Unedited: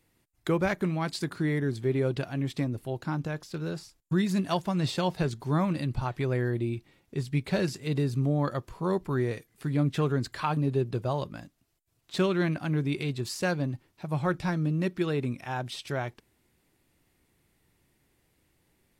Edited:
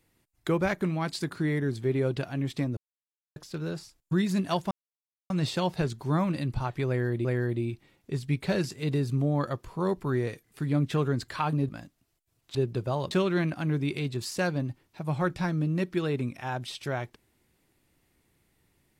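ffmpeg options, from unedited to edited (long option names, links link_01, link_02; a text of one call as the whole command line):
ffmpeg -i in.wav -filter_complex "[0:a]asplit=8[link_01][link_02][link_03][link_04][link_05][link_06][link_07][link_08];[link_01]atrim=end=2.77,asetpts=PTS-STARTPTS,afade=type=out:start_time=2.766:duration=0.004:curve=hsin[link_09];[link_02]atrim=start=2.77:end=3.36,asetpts=PTS-STARTPTS,volume=0[link_10];[link_03]atrim=start=3.36:end=4.71,asetpts=PTS-STARTPTS,afade=type=in:duration=0.004:curve=hsin,afade=type=out:start_time=1.346:duration=0.004:curve=hsin,apad=pad_dur=0.59[link_11];[link_04]atrim=start=4.71:end=6.662,asetpts=PTS-STARTPTS,afade=type=in:duration=0.004:curve=hsin[link_12];[link_05]atrim=start=6.288:end=10.732[link_13];[link_06]atrim=start=11.288:end=12.152[link_14];[link_07]atrim=start=10.728:end=11.292[link_15];[link_08]atrim=start=12.148[link_16];[link_09][link_10][link_11][link_12]concat=n=4:v=0:a=1[link_17];[link_17][link_13]acrossfade=duration=0.004:curve1=hsin:curve2=hsin[link_18];[link_18][link_14]acrossfade=duration=0.004:curve1=hsin:curve2=hsin[link_19];[link_19][link_15]acrossfade=duration=0.004:curve1=hsin:curve2=hsin[link_20];[link_20][link_16]acrossfade=duration=0.004:curve1=hsin:curve2=hsin" out.wav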